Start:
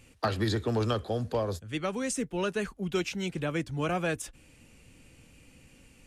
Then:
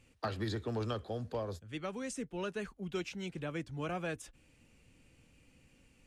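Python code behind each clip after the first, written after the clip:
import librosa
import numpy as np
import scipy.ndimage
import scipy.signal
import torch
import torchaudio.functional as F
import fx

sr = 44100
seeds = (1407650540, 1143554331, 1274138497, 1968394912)

y = fx.high_shelf(x, sr, hz=9600.0, db=-8.0)
y = F.gain(torch.from_numpy(y), -8.0).numpy()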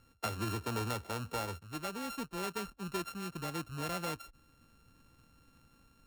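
y = np.r_[np.sort(x[:len(x) // 32 * 32].reshape(-1, 32), axis=1).ravel(), x[len(x) // 32 * 32:]]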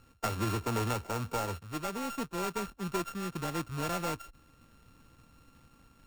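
y = fx.dead_time(x, sr, dead_ms=0.13)
y = F.gain(torch.from_numpy(y), 5.0).numpy()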